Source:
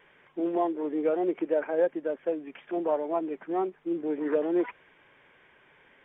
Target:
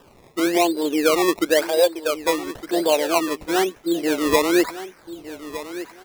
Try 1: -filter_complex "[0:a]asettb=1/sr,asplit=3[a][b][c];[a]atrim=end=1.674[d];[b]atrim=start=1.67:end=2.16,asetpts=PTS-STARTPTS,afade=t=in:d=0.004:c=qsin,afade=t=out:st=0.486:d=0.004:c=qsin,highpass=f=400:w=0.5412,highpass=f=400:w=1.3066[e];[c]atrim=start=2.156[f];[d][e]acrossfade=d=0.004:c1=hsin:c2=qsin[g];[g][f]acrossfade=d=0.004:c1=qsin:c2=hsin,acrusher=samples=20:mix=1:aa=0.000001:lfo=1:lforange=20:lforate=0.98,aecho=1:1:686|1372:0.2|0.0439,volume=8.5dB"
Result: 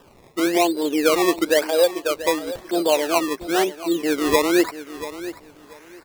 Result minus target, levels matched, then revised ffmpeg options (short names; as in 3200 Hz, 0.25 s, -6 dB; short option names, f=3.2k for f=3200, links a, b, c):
echo 0.525 s early
-filter_complex "[0:a]asettb=1/sr,asplit=3[a][b][c];[a]atrim=end=1.674[d];[b]atrim=start=1.67:end=2.16,asetpts=PTS-STARTPTS,afade=t=in:d=0.004:c=qsin,afade=t=out:st=0.486:d=0.004:c=qsin,highpass=f=400:w=0.5412,highpass=f=400:w=1.3066[e];[c]atrim=start=2.156[f];[d][e]acrossfade=d=0.004:c1=hsin:c2=qsin[g];[g][f]acrossfade=d=0.004:c1=qsin:c2=hsin,acrusher=samples=20:mix=1:aa=0.000001:lfo=1:lforange=20:lforate=0.98,aecho=1:1:1211|2422:0.2|0.0439,volume=8.5dB"